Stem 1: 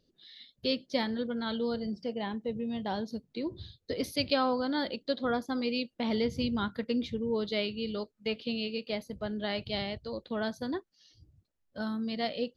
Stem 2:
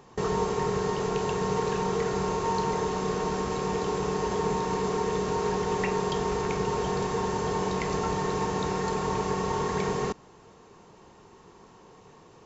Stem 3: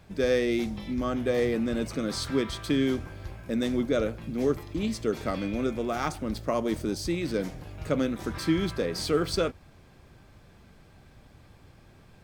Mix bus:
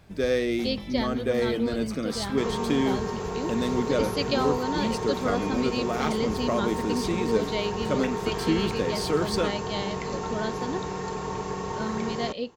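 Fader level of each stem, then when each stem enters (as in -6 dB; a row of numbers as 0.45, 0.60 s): +1.0, -3.5, 0.0 dB; 0.00, 2.20, 0.00 s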